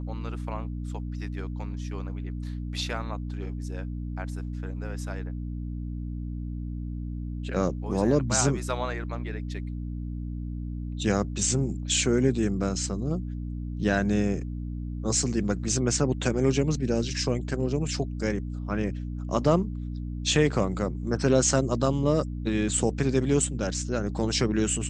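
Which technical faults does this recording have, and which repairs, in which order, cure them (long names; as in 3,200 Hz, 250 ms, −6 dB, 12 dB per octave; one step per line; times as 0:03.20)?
mains hum 60 Hz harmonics 5 −33 dBFS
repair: hum removal 60 Hz, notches 5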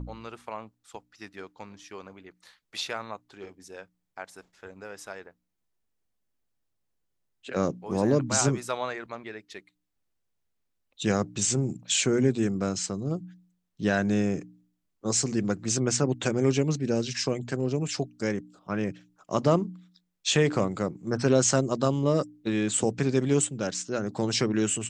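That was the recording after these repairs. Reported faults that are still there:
none of them is left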